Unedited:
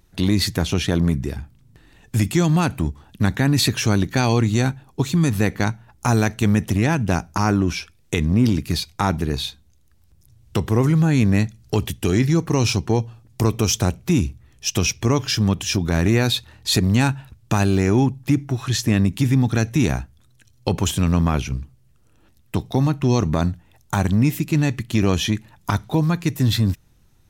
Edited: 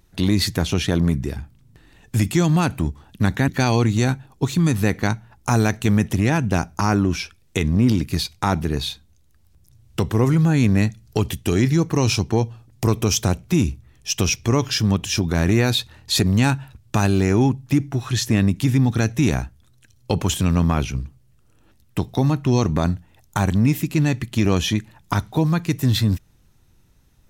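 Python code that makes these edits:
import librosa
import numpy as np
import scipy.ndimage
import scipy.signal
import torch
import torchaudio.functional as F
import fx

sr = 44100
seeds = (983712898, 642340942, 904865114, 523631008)

y = fx.edit(x, sr, fx.cut(start_s=3.48, length_s=0.57), tone=tone)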